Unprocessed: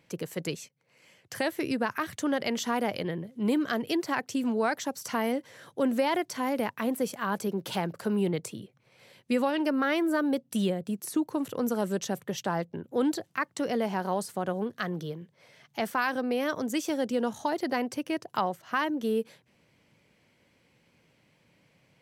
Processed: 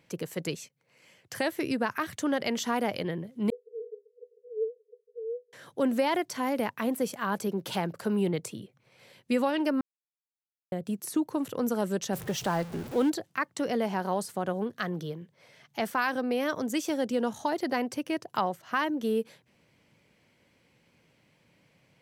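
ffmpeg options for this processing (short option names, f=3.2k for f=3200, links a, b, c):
-filter_complex "[0:a]asettb=1/sr,asplit=3[a][b][c];[a]atrim=end=3.504[d];[b]atrim=start=3.5:end=5.53,asetpts=PTS-STARTPTS,afade=t=in:d=0.004:c=qsin,afade=t=out:st=2.026:d=0.004:c=qsin,asuperpass=centerf=450:order=20:qfactor=5.2[e];[c]atrim=start=5.526[f];[d][e]acrossfade=d=0.004:c1=hsin:c2=qsin[g];[g][f]acrossfade=d=0.004:c1=qsin:c2=hsin,asettb=1/sr,asplit=3[h][i][j];[h]atrim=end=12.134[k];[i]atrim=start=12.13:end=13.1,asetpts=PTS-STARTPTS,afade=t=in:d=0.004:c=qsin,afade=t=out:st=0.966:d=0.004:c=qsin,aeval=exprs='val(0)+0.5*0.015*sgn(val(0))':c=same[l];[j]atrim=start=13.096[m];[k][l]acrossfade=d=0.004:c1=hsin:c2=qsin[n];[n][m]acrossfade=d=0.004:c1=qsin:c2=hsin,asplit=3[o][p][q];[o]atrim=end=9.81,asetpts=PTS-STARTPTS,afade=t=out:st=9.806:d=0.004:c=hsin[r];[p]atrim=start=9.81:end=10.72,asetpts=PTS-STARTPTS,volume=0[s];[q]atrim=start=10.72,asetpts=PTS-STARTPTS,afade=t=in:d=0.004:c=hsin[t];[r][s][t]concat=n=3:v=0:a=1"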